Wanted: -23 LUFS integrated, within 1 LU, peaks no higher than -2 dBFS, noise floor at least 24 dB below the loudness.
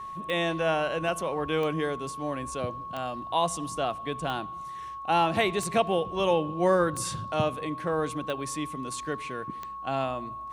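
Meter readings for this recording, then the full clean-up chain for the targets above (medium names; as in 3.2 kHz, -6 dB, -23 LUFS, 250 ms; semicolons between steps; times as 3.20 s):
clicks found 8; steady tone 1.1 kHz; tone level -36 dBFS; loudness -29.0 LUFS; peak level -10.0 dBFS; loudness target -23.0 LUFS
-> de-click; band-stop 1.1 kHz, Q 30; trim +6 dB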